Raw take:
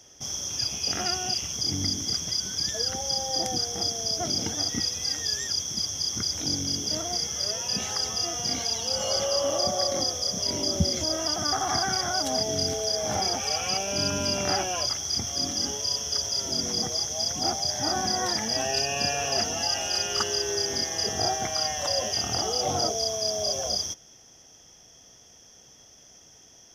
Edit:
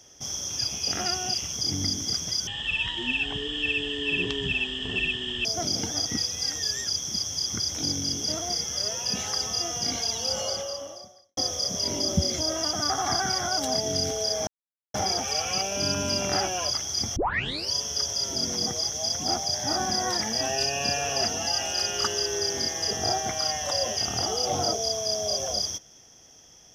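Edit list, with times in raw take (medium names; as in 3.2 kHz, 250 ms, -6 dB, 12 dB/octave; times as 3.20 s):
2.47–4.08 s: speed 54%
8.95–10.00 s: fade out quadratic
13.10 s: insert silence 0.47 s
15.32 s: tape start 0.56 s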